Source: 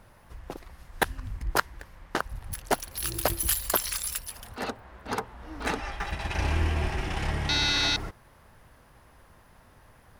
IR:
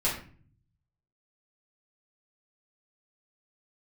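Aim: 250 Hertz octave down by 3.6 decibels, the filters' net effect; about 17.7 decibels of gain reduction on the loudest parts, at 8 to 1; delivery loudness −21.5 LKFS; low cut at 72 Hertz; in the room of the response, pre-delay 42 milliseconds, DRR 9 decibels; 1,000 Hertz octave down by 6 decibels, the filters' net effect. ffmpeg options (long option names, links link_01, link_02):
-filter_complex "[0:a]highpass=72,equalizer=frequency=250:width_type=o:gain=-4.5,equalizer=frequency=1000:width_type=o:gain=-8,acompressor=threshold=-41dB:ratio=8,asplit=2[link_01][link_02];[1:a]atrim=start_sample=2205,adelay=42[link_03];[link_02][link_03]afir=irnorm=-1:irlink=0,volume=-18dB[link_04];[link_01][link_04]amix=inputs=2:normalize=0,volume=23dB"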